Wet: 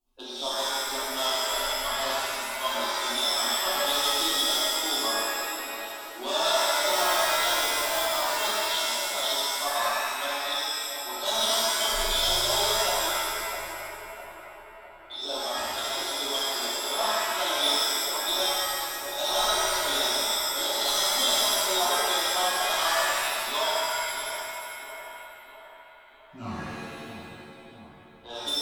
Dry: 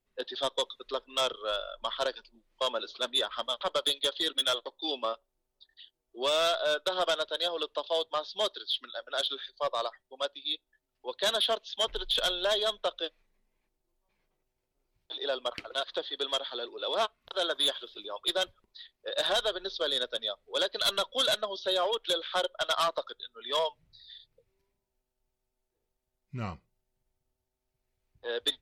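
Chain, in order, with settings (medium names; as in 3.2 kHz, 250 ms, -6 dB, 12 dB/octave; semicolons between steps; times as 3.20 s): 6.80–8.47 s: block-companded coder 3-bit; flange 0.11 Hz, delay 8.8 ms, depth 6.6 ms, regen -58%; in parallel at -4 dB: saturation -39 dBFS, distortion -6 dB; on the sum: static phaser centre 490 Hz, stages 6; on a send: two-band feedback delay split 1 kHz, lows 656 ms, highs 143 ms, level -9 dB; on the sum: pitch-shifted reverb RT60 1.7 s, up +7 st, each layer -2 dB, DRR -8 dB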